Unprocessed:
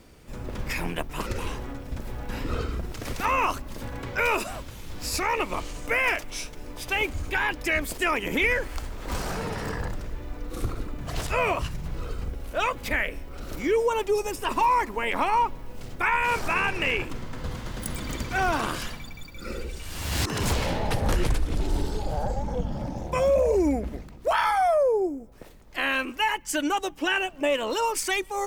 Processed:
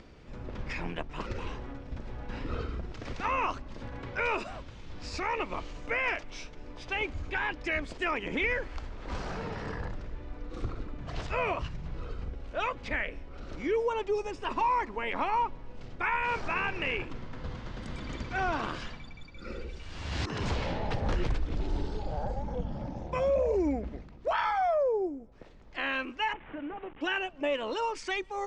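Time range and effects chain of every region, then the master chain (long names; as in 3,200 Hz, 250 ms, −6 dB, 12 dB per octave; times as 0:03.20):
0:26.33–0:27.01: linear delta modulator 16 kbit/s, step −38 dBFS + downward compressor 2.5 to 1, threshold −31 dBFS + high-frequency loss of the air 77 metres
whole clip: Bessel low-pass filter 4,100 Hz, order 6; upward compression, threshold −40 dBFS; level −5.5 dB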